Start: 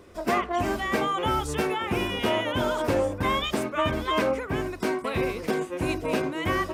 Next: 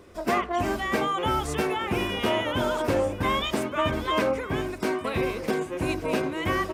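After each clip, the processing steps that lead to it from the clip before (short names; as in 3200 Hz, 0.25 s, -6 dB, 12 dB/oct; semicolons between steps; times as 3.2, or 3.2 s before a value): echo 1.152 s -17 dB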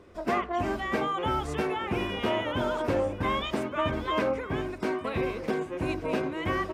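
LPF 3300 Hz 6 dB/oct; gain -2.5 dB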